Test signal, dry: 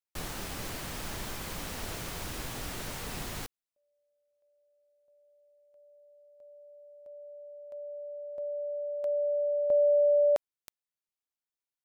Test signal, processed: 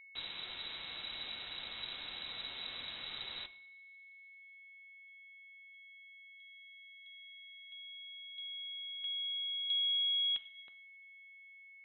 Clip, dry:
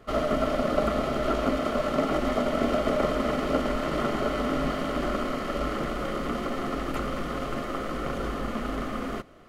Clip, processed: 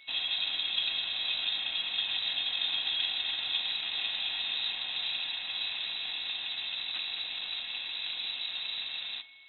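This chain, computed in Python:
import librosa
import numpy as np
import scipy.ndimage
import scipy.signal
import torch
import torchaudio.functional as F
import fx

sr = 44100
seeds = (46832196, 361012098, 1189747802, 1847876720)

y = fx.rev_double_slope(x, sr, seeds[0], early_s=0.59, late_s=2.5, knee_db=-22, drr_db=11.5)
y = y + 10.0 ** (-47.0 / 20.0) * np.sin(2.0 * np.pi * 1700.0 * np.arange(len(y)) / sr)
y = fx.freq_invert(y, sr, carrier_hz=3900)
y = F.gain(torch.from_numpy(y), -7.0).numpy()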